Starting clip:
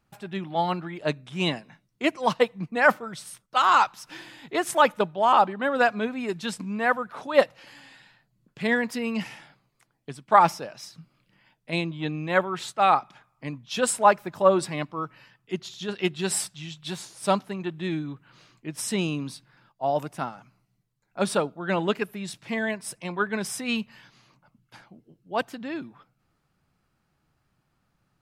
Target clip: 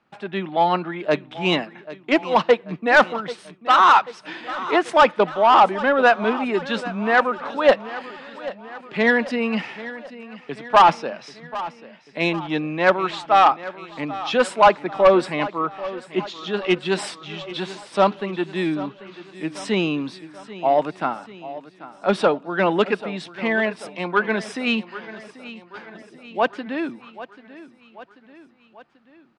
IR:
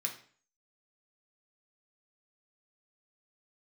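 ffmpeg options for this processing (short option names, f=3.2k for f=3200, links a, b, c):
-filter_complex "[0:a]acrossover=split=190 4200:gain=0.0891 1 0.0891[a][b][c];[a][b][c]amix=inputs=3:normalize=0,atempo=0.96,asoftclip=type=tanh:threshold=-14dB,asplit=2[d][e];[e]aecho=0:1:788|1576|2364|3152|3940:0.158|0.0888|0.0497|0.0278|0.0156[f];[d][f]amix=inputs=2:normalize=0,aresample=22050,aresample=44100,volume=8dB"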